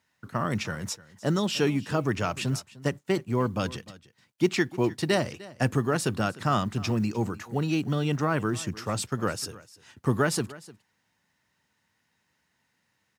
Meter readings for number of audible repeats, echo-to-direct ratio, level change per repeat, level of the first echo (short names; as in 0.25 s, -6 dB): 1, -19.5 dB, no steady repeat, -19.5 dB